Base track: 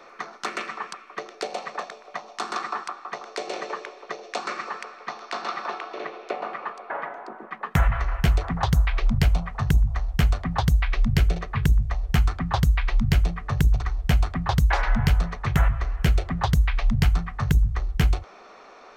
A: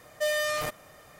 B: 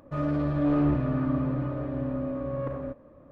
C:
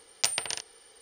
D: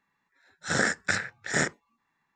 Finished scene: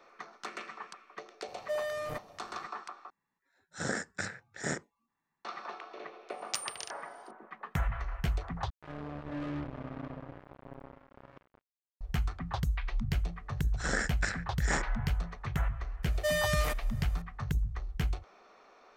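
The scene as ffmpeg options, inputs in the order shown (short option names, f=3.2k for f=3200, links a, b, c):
-filter_complex "[1:a]asplit=2[a][b];[4:a]asplit=2[c][d];[0:a]volume=-11.5dB[e];[a]tiltshelf=f=1.4k:g=7.5[f];[c]equalizer=f=2.7k:t=o:w=2.4:g=-6.5[g];[3:a]highpass=42[h];[2:a]acrusher=bits=3:mix=0:aa=0.5[i];[d]bandreject=f=3.7k:w=13[j];[e]asplit=3[k][l][m];[k]atrim=end=3.104[n];[g]atrim=end=2.35,asetpts=PTS-STARTPTS,volume=-6dB[o];[l]atrim=start=5.446:end=8.704[p];[i]atrim=end=3.31,asetpts=PTS-STARTPTS,volume=-15dB[q];[m]atrim=start=12.006[r];[f]atrim=end=1.19,asetpts=PTS-STARTPTS,volume=-10dB,afade=t=in:d=0.004:c=hsin,afade=t=out:st=1.186:d=0.004:c=hsin,adelay=1480[s];[h]atrim=end=1.01,asetpts=PTS-STARTPTS,volume=-9dB,afade=t=in:d=0.004:c=hsin,afade=t=out:st=1.006:d=0.004:c=hsin,adelay=6300[t];[j]atrim=end=2.35,asetpts=PTS-STARTPTS,volume=-7dB,afade=t=in:d=0.004:c=hsin,afade=t=out:st=2.346:d=0.004:c=hsin,adelay=13140[u];[b]atrim=end=1.19,asetpts=PTS-STARTPTS,volume=-2.5dB,afade=t=in:d=0.004:c=hsin,afade=t=out:st=1.186:d=0.004:c=hsin,adelay=16030[v];[n][o]acrossfade=d=0.004:c1=hsin:c2=hsin[w];[w][p]acrossfade=d=0.004:c1=hsin:c2=hsin[x];[x][q]acrossfade=d=0.004:c1=hsin:c2=hsin[y];[y][r]acrossfade=d=0.004:c1=hsin:c2=hsin[z];[z][s][t][u][v]amix=inputs=5:normalize=0"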